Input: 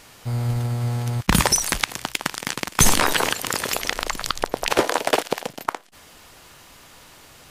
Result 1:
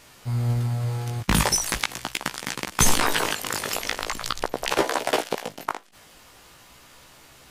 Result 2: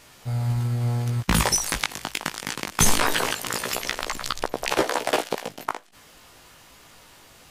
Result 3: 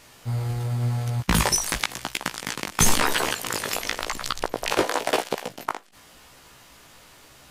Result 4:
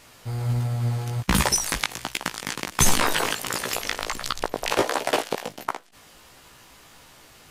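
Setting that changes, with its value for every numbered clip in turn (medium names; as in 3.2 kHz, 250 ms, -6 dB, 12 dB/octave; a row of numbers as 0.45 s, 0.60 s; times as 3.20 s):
chorus, rate: 0.42 Hz, 0.23 Hz, 0.94 Hz, 1.4 Hz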